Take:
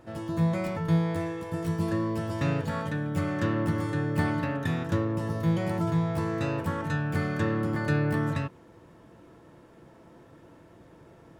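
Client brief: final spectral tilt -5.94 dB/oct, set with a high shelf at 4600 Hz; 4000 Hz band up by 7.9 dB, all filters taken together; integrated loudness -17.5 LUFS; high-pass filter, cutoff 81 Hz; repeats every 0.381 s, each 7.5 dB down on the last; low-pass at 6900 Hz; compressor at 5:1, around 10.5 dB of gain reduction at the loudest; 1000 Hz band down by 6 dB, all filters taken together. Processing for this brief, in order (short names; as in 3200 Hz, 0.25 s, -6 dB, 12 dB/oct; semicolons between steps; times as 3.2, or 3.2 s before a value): HPF 81 Hz; LPF 6900 Hz; bell 1000 Hz -8.5 dB; bell 4000 Hz +7.5 dB; high shelf 4600 Hz +6.5 dB; compressor 5:1, threshold -33 dBFS; feedback echo 0.381 s, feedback 42%, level -7.5 dB; gain +18 dB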